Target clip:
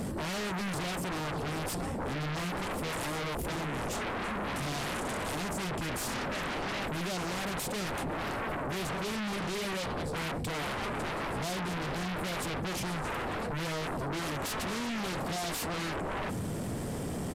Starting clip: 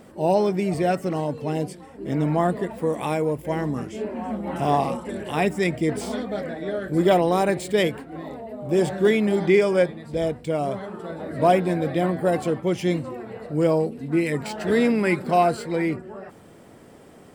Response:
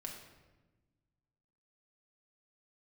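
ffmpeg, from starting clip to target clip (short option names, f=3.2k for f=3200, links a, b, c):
-filter_complex "[0:a]bass=f=250:g=12,treble=f=4k:g=7,acrossover=split=1600[a][b];[b]alimiter=level_in=0.5dB:limit=-24dB:level=0:latency=1:release=191,volume=-0.5dB[c];[a][c]amix=inputs=2:normalize=0,asoftclip=type=tanh:threshold=-19dB,areverse,acompressor=threshold=-29dB:ratio=6,areverse,aeval=exprs='0.0631*sin(PI/2*5.01*val(0)/0.0631)':c=same,aresample=32000,aresample=44100,volume=-7.5dB"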